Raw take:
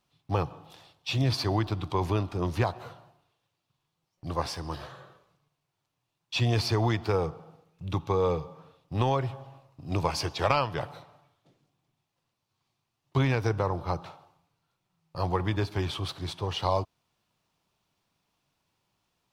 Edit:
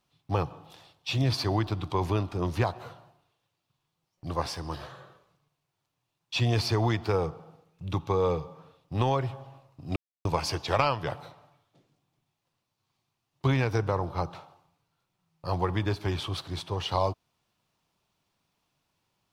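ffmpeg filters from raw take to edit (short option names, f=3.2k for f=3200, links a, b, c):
-filter_complex "[0:a]asplit=2[a][b];[a]atrim=end=9.96,asetpts=PTS-STARTPTS,afade=t=out:st=9.956:d=0.004:c=hsin,apad=pad_dur=0.29[c];[b]atrim=start=9.96,asetpts=PTS-STARTPTS,afade=t=in:d=0.004:c=hsin[d];[c][d]concat=n=2:v=0:a=1"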